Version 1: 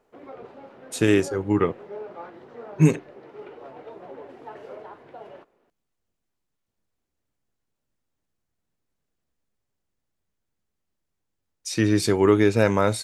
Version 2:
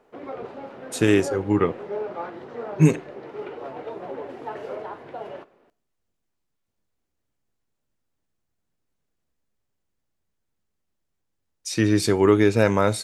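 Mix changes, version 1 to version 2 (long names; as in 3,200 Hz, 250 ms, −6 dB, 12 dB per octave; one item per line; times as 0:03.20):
background +5.0 dB
reverb: on, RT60 0.50 s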